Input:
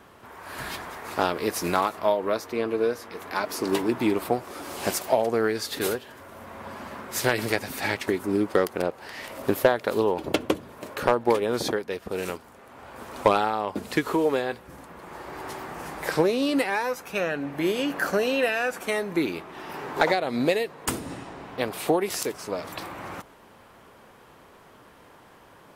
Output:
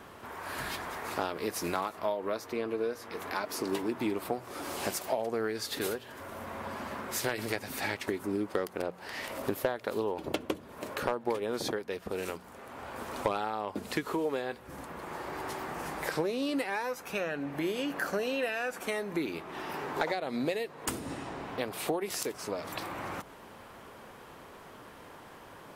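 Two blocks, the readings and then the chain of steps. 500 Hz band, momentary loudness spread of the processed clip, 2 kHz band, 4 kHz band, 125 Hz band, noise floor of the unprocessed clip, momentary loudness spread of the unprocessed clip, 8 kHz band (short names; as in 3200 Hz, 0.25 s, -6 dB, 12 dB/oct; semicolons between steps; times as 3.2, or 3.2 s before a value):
-8.0 dB, 12 LU, -7.0 dB, -6.0 dB, -7.0 dB, -52 dBFS, 15 LU, -5.0 dB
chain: notches 60/120/180 Hz; compressor 2:1, threshold -39 dBFS, peak gain reduction 14 dB; gain +2 dB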